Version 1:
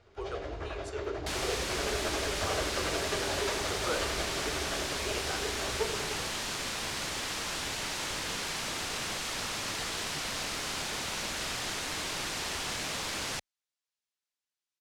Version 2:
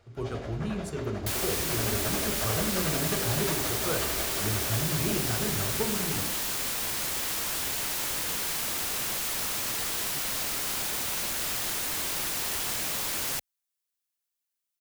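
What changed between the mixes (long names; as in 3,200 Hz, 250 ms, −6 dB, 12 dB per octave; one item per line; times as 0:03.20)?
speech: remove Butterworth high-pass 400 Hz 48 dB per octave
master: remove low-pass filter 6,200 Hz 12 dB per octave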